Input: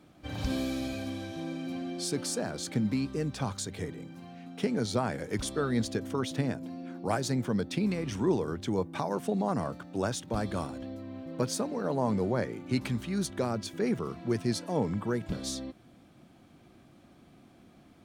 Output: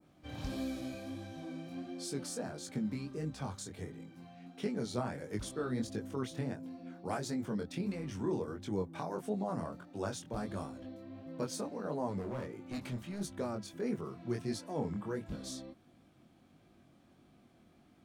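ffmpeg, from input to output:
-filter_complex "[0:a]asettb=1/sr,asplit=3[a][b][c];[a]atrim=end=12.194[d];[b]atrim=start=12.19:end=13.21,asetpts=PTS-STARTPTS,afade=t=in:d=0.004:c=qsin,afade=t=out:st=1.016:d=0.004:c=qsin,asoftclip=type=hard:threshold=-29dB[e];[c]atrim=start=13.206[f];[d][e]acrossfade=d=0.004:c1=hsin:c2=qsin[g];[g][f]acrossfade=d=0.004:c1=qsin:c2=hsin,adynamicequalizer=threshold=0.00316:dfrequency=3400:dqfactor=0.71:tfrequency=3400:tqfactor=0.71:attack=5:release=100:ratio=0.375:range=2:mode=cutabove:tftype=bell,flanger=delay=19:depth=5.6:speed=1.5,volume=-4dB"

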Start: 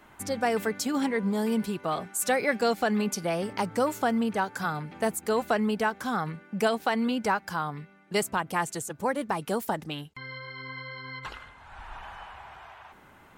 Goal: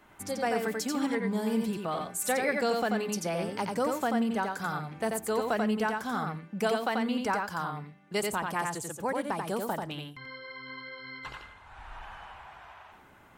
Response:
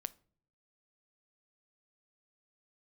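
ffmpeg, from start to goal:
-filter_complex "[0:a]asplit=2[a][b];[1:a]atrim=start_sample=2205,adelay=88[c];[b][c]afir=irnorm=-1:irlink=0,volume=-1dB[d];[a][d]amix=inputs=2:normalize=0,volume=-4dB"

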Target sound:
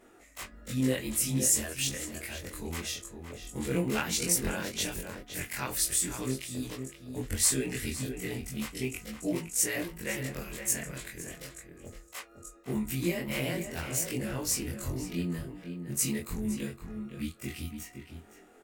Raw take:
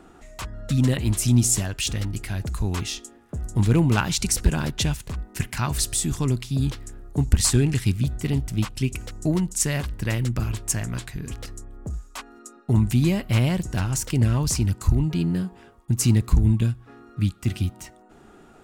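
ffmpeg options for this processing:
-filter_complex "[0:a]afftfilt=real='re':imag='-im':win_size=2048:overlap=0.75,equalizer=f=125:t=o:w=1:g=-4,equalizer=f=250:t=o:w=1:g=5,equalizer=f=500:t=o:w=1:g=12,equalizer=f=2k:t=o:w=1:g=11,flanger=delay=8.2:depth=9.4:regen=-56:speed=0.42:shape=triangular,aemphasis=mode=production:type=75fm,asplit=2[a][b];[b]adelay=513.1,volume=-7dB,highshelf=f=4k:g=-11.5[c];[a][c]amix=inputs=2:normalize=0,volume=-6.5dB"

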